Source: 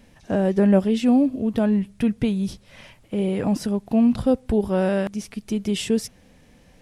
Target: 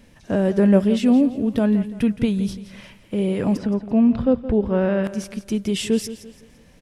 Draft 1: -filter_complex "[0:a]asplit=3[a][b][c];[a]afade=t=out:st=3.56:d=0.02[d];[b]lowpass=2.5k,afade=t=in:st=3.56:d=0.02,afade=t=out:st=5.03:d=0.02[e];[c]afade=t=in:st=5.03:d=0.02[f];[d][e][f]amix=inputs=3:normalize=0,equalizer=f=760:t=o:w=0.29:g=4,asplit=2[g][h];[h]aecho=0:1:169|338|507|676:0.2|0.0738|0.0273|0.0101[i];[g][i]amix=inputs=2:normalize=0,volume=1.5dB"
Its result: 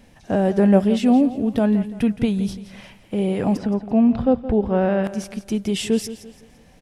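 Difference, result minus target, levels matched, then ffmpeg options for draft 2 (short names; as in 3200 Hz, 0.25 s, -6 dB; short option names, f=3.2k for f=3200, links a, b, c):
1000 Hz band +5.5 dB
-filter_complex "[0:a]asplit=3[a][b][c];[a]afade=t=out:st=3.56:d=0.02[d];[b]lowpass=2.5k,afade=t=in:st=3.56:d=0.02,afade=t=out:st=5.03:d=0.02[e];[c]afade=t=in:st=5.03:d=0.02[f];[d][e][f]amix=inputs=3:normalize=0,equalizer=f=760:t=o:w=0.29:g=-5,asplit=2[g][h];[h]aecho=0:1:169|338|507|676:0.2|0.0738|0.0273|0.0101[i];[g][i]amix=inputs=2:normalize=0,volume=1.5dB"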